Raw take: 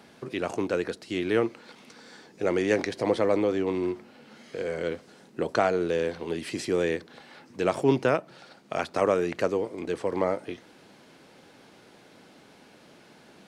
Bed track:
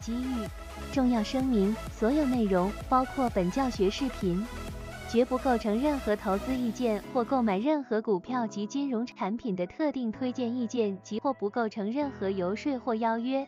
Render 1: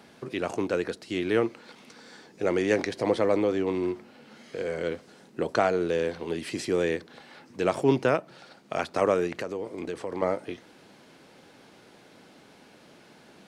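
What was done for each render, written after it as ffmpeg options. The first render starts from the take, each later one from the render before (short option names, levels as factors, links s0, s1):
-filter_complex "[0:a]asettb=1/sr,asplit=3[s0][s1][s2];[s0]atrim=end=9.274[s3];[s1]atrim=start=9.27:end=10.22,asetpts=PTS-STARTPTS,afade=t=in:d=0.004:c=qsin,afade=t=out:st=0.946:d=0.004:c=qsin,acompressor=threshold=0.0398:ratio=6:attack=3.2:release=140:knee=1:detection=peak[s4];[s2]atrim=start=10.216[s5];[s3][s4]acrossfade=d=0.004:c1=hsin:c2=qsin[s6];[s6][s5]acrossfade=d=0.004:c1=qsin:c2=hsin"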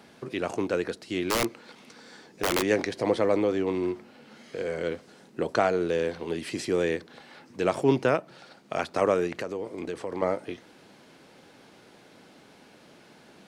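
-filter_complex "[0:a]asplit=3[s0][s1][s2];[s0]afade=t=out:st=1.23:d=0.02[s3];[s1]aeval=exprs='(mod(8.41*val(0)+1,2)-1)/8.41':c=same,afade=t=in:st=1.23:d=0.02,afade=t=out:st=2.61:d=0.02[s4];[s2]afade=t=in:st=2.61:d=0.02[s5];[s3][s4][s5]amix=inputs=3:normalize=0"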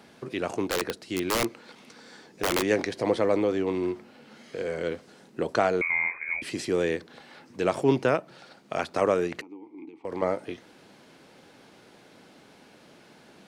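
-filter_complex "[0:a]asettb=1/sr,asplit=3[s0][s1][s2];[s0]atrim=end=0.644[s3];[s1]atrim=start=0.64:end=1.32,asetpts=PTS-STARTPTS,afade=t=in:d=0.004:c=qsin,afade=t=out:st=0.676:d=0.004:c=qsin,aeval=exprs='(mod(9.44*val(0)+1,2)-1)/9.44':c=same[s4];[s2]atrim=start=1.316[s5];[s3][s4]acrossfade=d=0.004:c1=hsin:c2=qsin[s6];[s6][s5]acrossfade=d=0.004:c1=qsin:c2=hsin,asettb=1/sr,asplit=3[s7][s8][s9];[s7]atrim=end=5.814[s10];[s8]atrim=start=5.81:end=6.42,asetpts=PTS-STARTPTS,afade=t=in:d=0.004:c=qsin,afade=t=out:st=0.606:d=0.004:c=qsin,lowpass=f=2200:t=q:w=0.5098,lowpass=f=2200:t=q:w=0.6013,lowpass=f=2200:t=q:w=0.9,lowpass=f=2200:t=q:w=2.563,afreqshift=-2600[s11];[s9]atrim=start=6.416[s12];[s10][s11]acrossfade=d=0.004:c1=hsin:c2=qsin[s13];[s13][s12]acrossfade=d=0.004:c1=qsin:c2=hsin,asettb=1/sr,asplit=3[s14][s15][s16];[s14]atrim=end=9.414[s17];[s15]atrim=start=9.41:end=10.05,asetpts=PTS-STARTPTS,afade=t=in:d=0.004:c=qsin,afade=t=out:st=0.636:d=0.004:c=qsin,asplit=3[s18][s19][s20];[s18]bandpass=f=300:t=q:w=8,volume=1[s21];[s19]bandpass=f=870:t=q:w=8,volume=0.501[s22];[s20]bandpass=f=2240:t=q:w=8,volume=0.355[s23];[s21][s22][s23]amix=inputs=3:normalize=0[s24];[s16]atrim=start=10.046[s25];[s17][s24]acrossfade=d=0.004:c1=hsin:c2=qsin[s26];[s26][s25]acrossfade=d=0.004:c1=qsin:c2=hsin"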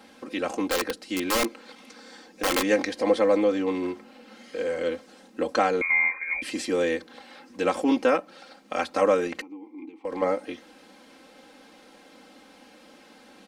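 -af "equalizer=f=120:w=1.4:g=-10.5,aecho=1:1:3.8:0.89"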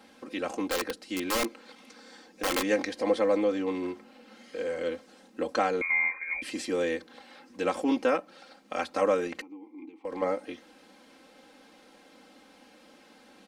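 -af "volume=0.631"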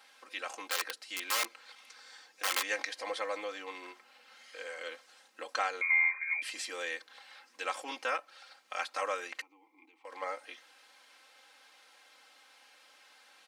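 -af "highpass=1100"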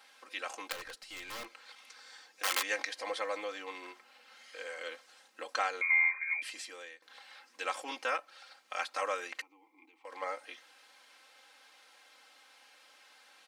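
-filter_complex "[0:a]asettb=1/sr,asplit=3[s0][s1][s2];[s0]atrim=end=0.724[s3];[s1]atrim=start=0.72:end=1.53,asetpts=PTS-STARTPTS,afade=t=in:d=0.004:c=qsin,afade=t=out:st=0.806:d=0.004:c=qsin,aeval=exprs='(tanh(100*val(0)+0.3)-tanh(0.3))/100':c=same[s4];[s2]atrim=start=1.526[s5];[s3][s4]acrossfade=d=0.004:c1=hsin:c2=qsin[s6];[s6][s5]acrossfade=d=0.004:c1=qsin:c2=hsin,asplit=2[s7][s8];[s7]atrim=end=7.02,asetpts=PTS-STARTPTS,afade=t=out:st=6.27:d=0.75:silence=0.0891251[s9];[s8]atrim=start=7.02,asetpts=PTS-STARTPTS,afade=t=in:d=0.004:c=hsin:silence=0.0891251[s10];[s9][s10]concat=n=2:v=0:a=1"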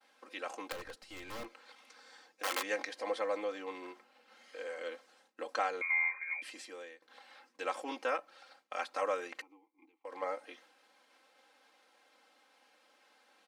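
-af "agate=range=0.0224:threshold=0.00158:ratio=3:detection=peak,tiltshelf=f=880:g=6.5"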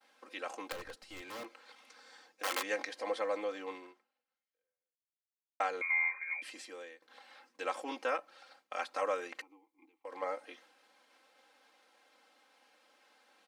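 -filter_complex "[0:a]asettb=1/sr,asplit=3[s0][s1][s2];[s0]atrim=end=1.214[s3];[s1]atrim=start=1.21:end=1.7,asetpts=PTS-STARTPTS,afade=t=in:d=0.004:c=qsin,afade=t=out:st=0.486:d=0.004:c=qsin,highpass=200[s4];[s2]atrim=start=1.696[s5];[s3][s4]acrossfade=d=0.004:c1=hsin:c2=qsin[s6];[s6][s5]acrossfade=d=0.004:c1=qsin:c2=hsin,asplit=2[s7][s8];[s7]atrim=end=5.6,asetpts=PTS-STARTPTS,afade=t=out:st=3.73:d=1.87:c=exp[s9];[s8]atrim=start=5.6,asetpts=PTS-STARTPTS,afade=t=in:d=0.004:c=hsin[s10];[s9][s10]concat=n=2:v=0:a=1"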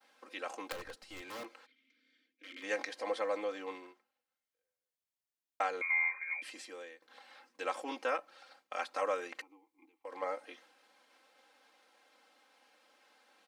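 -filter_complex "[0:a]asplit=3[s0][s1][s2];[s0]afade=t=out:st=1.65:d=0.02[s3];[s1]asplit=3[s4][s5][s6];[s4]bandpass=f=270:t=q:w=8,volume=1[s7];[s5]bandpass=f=2290:t=q:w=8,volume=0.501[s8];[s6]bandpass=f=3010:t=q:w=8,volume=0.355[s9];[s7][s8][s9]amix=inputs=3:normalize=0,afade=t=in:st=1.65:d=0.02,afade=t=out:st=2.62:d=0.02[s10];[s2]afade=t=in:st=2.62:d=0.02[s11];[s3][s10][s11]amix=inputs=3:normalize=0"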